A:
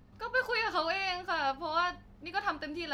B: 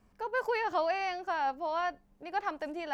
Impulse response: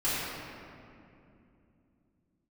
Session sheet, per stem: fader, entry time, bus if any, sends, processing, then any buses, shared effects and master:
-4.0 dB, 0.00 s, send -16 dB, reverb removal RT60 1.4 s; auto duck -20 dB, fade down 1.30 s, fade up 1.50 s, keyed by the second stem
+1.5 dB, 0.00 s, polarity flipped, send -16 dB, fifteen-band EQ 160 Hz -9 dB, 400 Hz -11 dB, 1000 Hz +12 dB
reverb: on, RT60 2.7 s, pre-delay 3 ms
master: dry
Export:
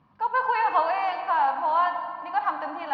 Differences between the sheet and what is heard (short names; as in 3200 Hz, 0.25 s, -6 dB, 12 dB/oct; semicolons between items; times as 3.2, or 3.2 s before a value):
stem B: polarity flipped; master: extra speaker cabinet 130–3900 Hz, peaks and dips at 150 Hz +7 dB, 410 Hz -4 dB, 2300 Hz -3 dB